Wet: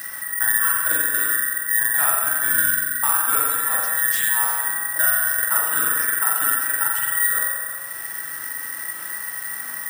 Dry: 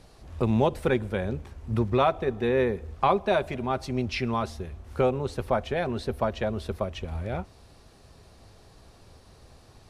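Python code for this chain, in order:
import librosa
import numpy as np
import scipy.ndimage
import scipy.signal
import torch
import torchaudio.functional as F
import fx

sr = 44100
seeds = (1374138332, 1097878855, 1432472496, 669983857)

p1 = fx.band_invert(x, sr, width_hz=2000)
p2 = scipy.signal.sosfilt(scipy.signal.butter(2, 85.0, 'highpass', fs=sr, output='sos'), p1)
p3 = fx.high_shelf(p2, sr, hz=8100.0, db=5.5)
p4 = fx.rider(p3, sr, range_db=10, speed_s=0.5)
p5 = p3 + (p4 * librosa.db_to_amplitude(0.0))
p6 = fx.notch_comb(p5, sr, f0_hz=200.0)
p7 = p6 + 10.0 ** (-20.5 / 20.0) * np.pad(p6, (int(364 * sr / 1000.0), 0))[:len(p6)]
p8 = fx.rev_spring(p7, sr, rt60_s=1.2, pass_ms=(42,), chirp_ms=65, drr_db=-4.5)
p9 = fx.cheby_harmonics(p8, sr, harmonics=(6, 8), levels_db=(-26, -35), full_scale_db=-0.5)
p10 = (np.kron(p9[::4], np.eye(4)[0]) * 4)[:len(p9)]
p11 = fx.band_squash(p10, sr, depth_pct=70)
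y = p11 * librosa.db_to_amplitude(-10.5)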